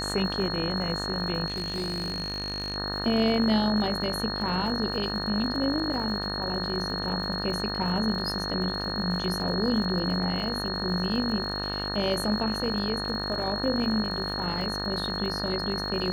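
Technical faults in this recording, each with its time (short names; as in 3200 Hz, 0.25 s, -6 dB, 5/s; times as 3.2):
buzz 50 Hz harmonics 37 -34 dBFS
crackle 150/s -38 dBFS
tone 4300 Hz -32 dBFS
1.46–2.76 clipped -26.5 dBFS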